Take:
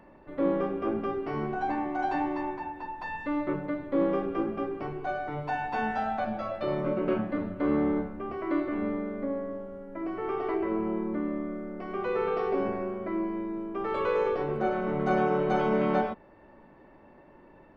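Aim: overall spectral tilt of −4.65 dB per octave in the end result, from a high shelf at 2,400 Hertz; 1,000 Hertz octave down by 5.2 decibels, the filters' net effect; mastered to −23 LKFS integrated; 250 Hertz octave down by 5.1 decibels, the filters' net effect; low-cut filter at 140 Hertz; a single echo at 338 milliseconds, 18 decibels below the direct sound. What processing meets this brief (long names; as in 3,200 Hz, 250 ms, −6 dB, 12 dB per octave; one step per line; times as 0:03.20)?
high-pass filter 140 Hz
parametric band 250 Hz −6 dB
parametric band 1,000 Hz −8 dB
high-shelf EQ 2,400 Hz +6 dB
single-tap delay 338 ms −18 dB
level +11 dB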